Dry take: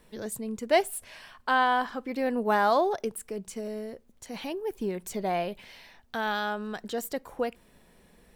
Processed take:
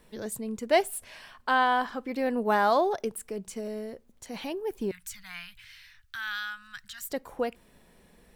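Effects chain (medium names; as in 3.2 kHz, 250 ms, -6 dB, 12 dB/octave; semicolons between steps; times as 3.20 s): 4.91–7.10 s: Chebyshev band-stop 120–1400 Hz, order 3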